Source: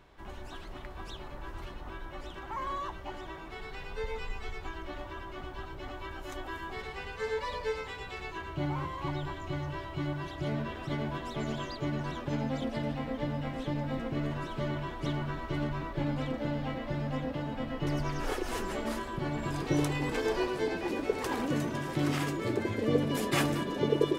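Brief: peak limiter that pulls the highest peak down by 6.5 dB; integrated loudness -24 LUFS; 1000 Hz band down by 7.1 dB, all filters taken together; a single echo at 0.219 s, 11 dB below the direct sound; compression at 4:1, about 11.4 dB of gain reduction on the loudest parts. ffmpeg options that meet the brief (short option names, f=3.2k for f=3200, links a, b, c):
-af "equalizer=f=1k:t=o:g=-8.5,acompressor=threshold=-37dB:ratio=4,alimiter=level_in=7.5dB:limit=-24dB:level=0:latency=1,volume=-7.5dB,aecho=1:1:219:0.282,volume=18dB"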